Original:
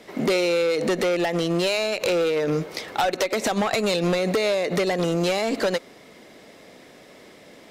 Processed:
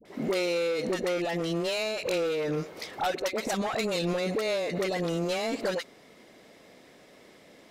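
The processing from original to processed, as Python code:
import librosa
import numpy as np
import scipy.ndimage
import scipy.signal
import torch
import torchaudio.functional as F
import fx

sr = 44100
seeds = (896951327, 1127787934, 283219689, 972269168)

y = fx.dispersion(x, sr, late='highs', ms=54.0, hz=790.0)
y = y * librosa.db_to_amplitude(-6.5)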